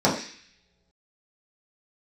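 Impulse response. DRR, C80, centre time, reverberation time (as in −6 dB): −7.0 dB, 10.0 dB, 30 ms, non-exponential decay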